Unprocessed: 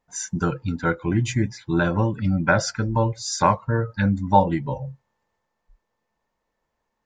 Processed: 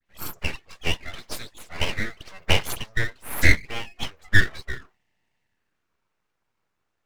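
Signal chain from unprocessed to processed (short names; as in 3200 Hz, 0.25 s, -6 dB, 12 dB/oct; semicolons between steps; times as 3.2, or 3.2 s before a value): high-pass sweep 1000 Hz -> 350 Hz, 5.37–6.23; dispersion highs, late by 63 ms, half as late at 2300 Hz; full-wave rectifier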